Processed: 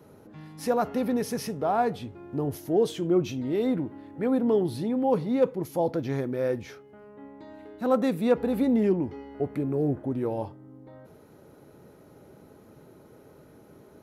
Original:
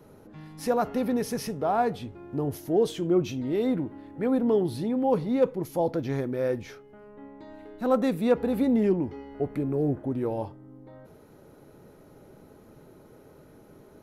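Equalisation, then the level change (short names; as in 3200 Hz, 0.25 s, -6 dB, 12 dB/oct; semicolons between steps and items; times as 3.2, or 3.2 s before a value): HPF 54 Hz; 0.0 dB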